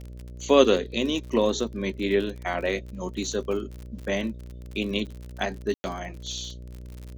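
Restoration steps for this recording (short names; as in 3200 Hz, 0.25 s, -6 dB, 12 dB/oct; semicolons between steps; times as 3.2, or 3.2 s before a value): de-click; de-hum 61 Hz, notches 10; room tone fill 5.74–5.84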